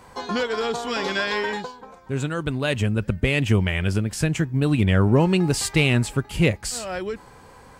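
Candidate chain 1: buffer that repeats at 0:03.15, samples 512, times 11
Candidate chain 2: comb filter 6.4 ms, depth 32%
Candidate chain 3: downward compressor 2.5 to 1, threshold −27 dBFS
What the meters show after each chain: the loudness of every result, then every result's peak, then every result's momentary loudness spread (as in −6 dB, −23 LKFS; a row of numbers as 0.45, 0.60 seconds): −23.0, −22.0, −29.0 LKFS; −5.5, −3.5, −13.5 dBFS; 10, 10, 7 LU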